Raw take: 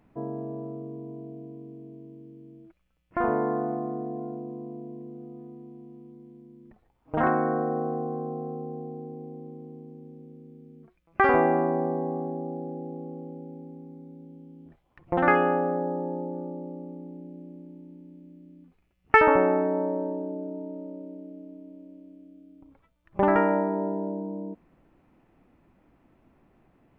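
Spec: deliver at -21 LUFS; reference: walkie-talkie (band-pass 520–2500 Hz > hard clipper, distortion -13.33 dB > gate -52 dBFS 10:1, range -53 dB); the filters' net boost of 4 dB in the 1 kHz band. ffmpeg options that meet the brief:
-af "highpass=520,lowpass=2500,equalizer=f=1000:t=o:g=6,asoftclip=type=hard:threshold=0.251,agate=range=0.00224:threshold=0.00251:ratio=10,volume=1.78"

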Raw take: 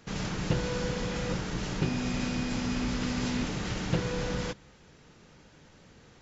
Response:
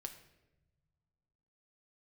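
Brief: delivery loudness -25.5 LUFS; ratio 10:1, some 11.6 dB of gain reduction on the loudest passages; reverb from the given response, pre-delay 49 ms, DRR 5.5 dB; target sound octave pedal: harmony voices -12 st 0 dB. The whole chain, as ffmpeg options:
-filter_complex "[0:a]acompressor=threshold=0.0158:ratio=10,asplit=2[s0][s1];[1:a]atrim=start_sample=2205,adelay=49[s2];[s1][s2]afir=irnorm=-1:irlink=0,volume=0.841[s3];[s0][s3]amix=inputs=2:normalize=0,asplit=2[s4][s5];[s5]asetrate=22050,aresample=44100,atempo=2,volume=1[s6];[s4][s6]amix=inputs=2:normalize=0,volume=3.76"

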